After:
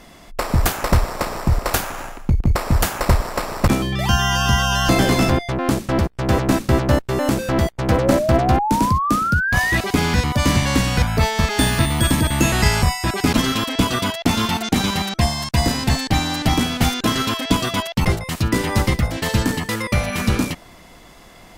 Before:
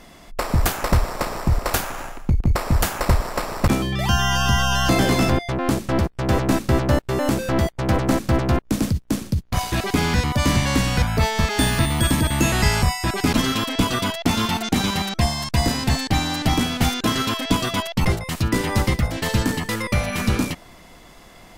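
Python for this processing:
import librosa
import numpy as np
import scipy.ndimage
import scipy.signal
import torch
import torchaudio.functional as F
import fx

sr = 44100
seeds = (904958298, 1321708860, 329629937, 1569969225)

y = fx.spec_paint(x, sr, seeds[0], shape='rise', start_s=7.91, length_s=1.87, low_hz=480.0, high_hz=2000.0, level_db=-22.0)
y = fx.cheby_harmonics(y, sr, harmonics=(3,), levels_db=(-23,), full_scale_db=-5.0)
y = y * librosa.db_to_amplitude(3.5)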